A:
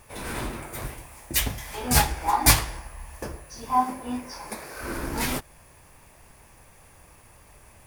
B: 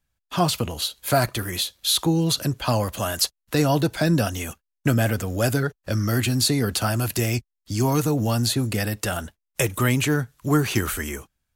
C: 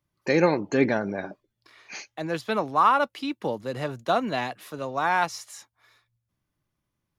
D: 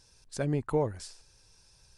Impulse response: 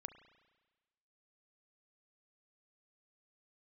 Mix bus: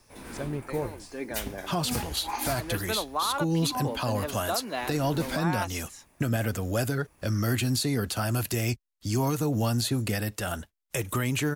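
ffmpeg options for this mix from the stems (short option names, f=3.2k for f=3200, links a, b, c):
-filter_complex "[0:a]equalizer=f=260:w=1.5:g=7,volume=-10.5dB[a];[1:a]adelay=1350,volume=-3dB[b];[2:a]highpass=220,adelay=400,volume=-4dB[c];[3:a]volume=-3.5dB,asplit=2[d][e];[e]apad=whole_len=334599[f];[c][f]sidechaincompress=threshold=-43dB:ratio=8:attack=16:release=776[g];[a][b][g][d]amix=inputs=4:normalize=0,alimiter=limit=-17.5dB:level=0:latency=1:release=154"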